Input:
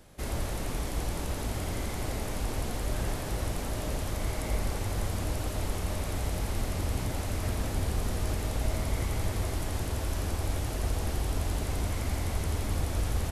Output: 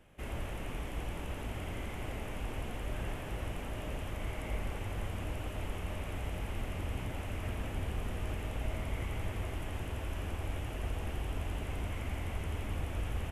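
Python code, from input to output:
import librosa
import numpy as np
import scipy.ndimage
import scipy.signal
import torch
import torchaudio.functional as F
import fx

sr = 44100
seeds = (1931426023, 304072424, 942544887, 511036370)

y = fx.high_shelf_res(x, sr, hz=3500.0, db=-6.5, q=3.0)
y = y * librosa.db_to_amplitude(-6.5)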